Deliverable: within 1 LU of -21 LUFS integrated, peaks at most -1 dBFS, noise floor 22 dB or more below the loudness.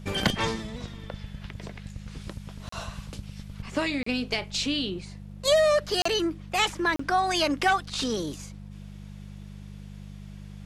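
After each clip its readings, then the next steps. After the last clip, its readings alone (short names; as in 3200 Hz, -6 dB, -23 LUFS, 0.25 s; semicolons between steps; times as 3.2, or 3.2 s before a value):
dropouts 4; longest dropout 34 ms; hum 50 Hz; harmonics up to 200 Hz; hum level -40 dBFS; loudness -26.5 LUFS; peak -10.5 dBFS; loudness target -21.0 LUFS
-> interpolate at 2.69/4.03/6.02/6.96, 34 ms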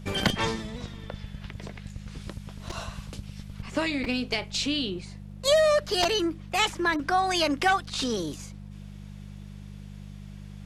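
dropouts 0; hum 50 Hz; harmonics up to 200 Hz; hum level -40 dBFS
-> de-hum 50 Hz, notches 4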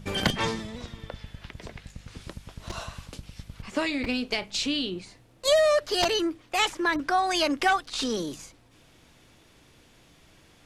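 hum none; loudness -26.5 LUFS; peak -11.0 dBFS; loudness target -21.0 LUFS
-> gain +5.5 dB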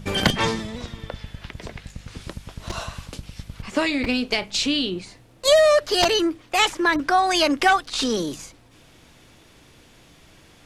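loudness -21.0 LUFS; peak -5.5 dBFS; noise floor -52 dBFS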